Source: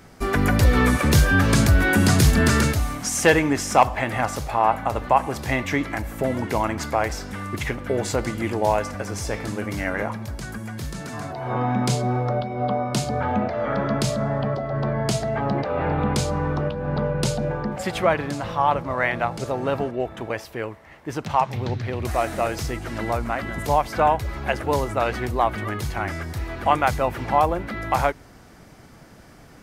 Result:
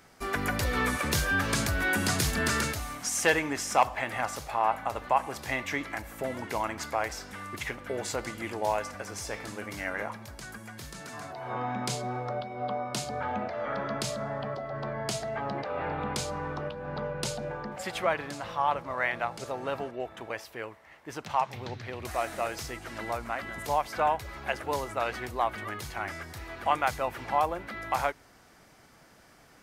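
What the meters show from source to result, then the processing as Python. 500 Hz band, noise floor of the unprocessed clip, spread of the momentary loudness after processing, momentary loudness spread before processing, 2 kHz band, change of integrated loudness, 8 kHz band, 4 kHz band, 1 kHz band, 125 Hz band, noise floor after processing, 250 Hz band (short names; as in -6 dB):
-9.0 dB, -47 dBFS, 12 LU, 12 LU, -5.5 dB, -8.5 dB, -5.0 dB, -5.0 dB, -7.0 dB, -14.5 dB, -57 dBFS, -12.5 dB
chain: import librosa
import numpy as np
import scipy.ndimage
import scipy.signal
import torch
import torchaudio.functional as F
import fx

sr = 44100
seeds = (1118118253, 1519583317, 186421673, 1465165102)

y = fx.low_shelf(x, sr, hz=410.0, db=-10.5)
y = y * librosa.db_to_amplitude(-5.0)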